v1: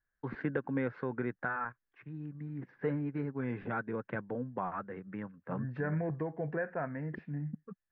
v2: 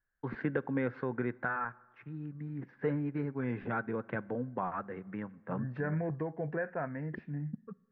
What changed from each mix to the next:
reverb: on, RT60 1.4 s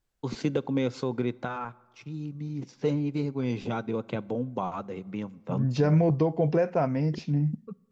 first voice −6.5 dB
master: remove transistor ladder low-pass 1,800 Hz, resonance 80%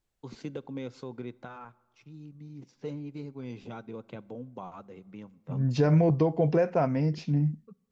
first voice −10.5 dB

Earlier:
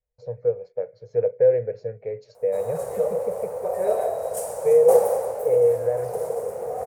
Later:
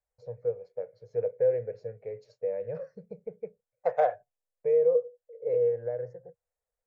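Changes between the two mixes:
first voice −7.5 dB
second voice +9.5 dB
background: muted

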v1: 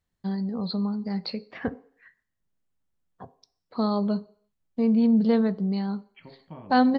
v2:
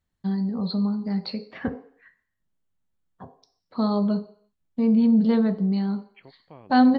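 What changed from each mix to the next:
first voice: send +7.5 dB
second voice: send off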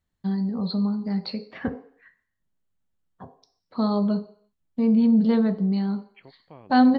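nothing changed

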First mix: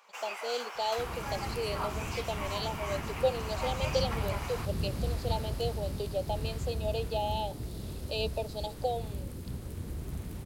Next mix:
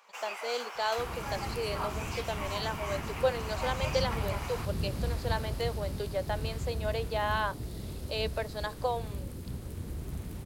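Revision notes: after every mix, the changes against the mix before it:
speech: remove linear-phase brick-wall band-stop 920–2,400 Hz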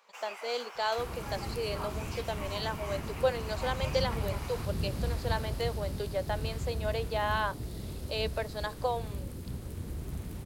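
first sound −4.5 dB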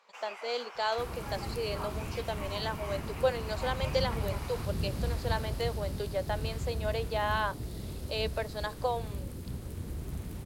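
first sound: add high-shelf EQ 7,900 Hz −11.5 dB

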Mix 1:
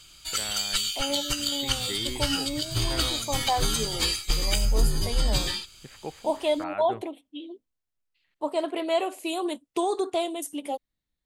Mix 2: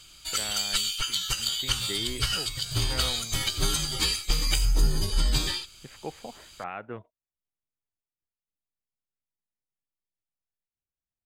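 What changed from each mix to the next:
second voice: muted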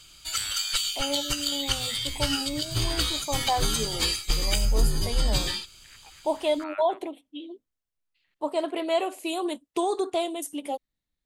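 first voice: add high-pass filter 1,200 Hz 24 dB per octave
second voice: unmuted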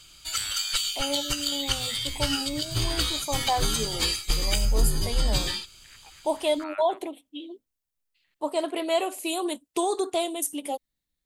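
second voice: add high-shelf EQ 5,900 Hz +10 dB

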